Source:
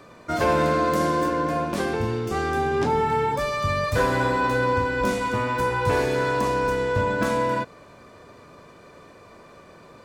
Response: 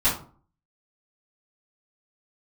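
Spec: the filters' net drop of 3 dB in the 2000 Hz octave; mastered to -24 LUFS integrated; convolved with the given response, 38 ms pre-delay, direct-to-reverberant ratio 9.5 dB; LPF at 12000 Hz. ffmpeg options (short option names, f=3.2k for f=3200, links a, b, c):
-filter_complex "[0:a]lowpass=12k,equalizer=f=2k:t=o:g=-4.5,asplit=2[a][b];[1:a]atrim=start_sample=2205,adelay=38[c];[b][c]afir=irnorm=-1:irlink=0,volume=-23.5dB[d];[a][d]amix=inputs=2:normalize=0,volume=-1dB"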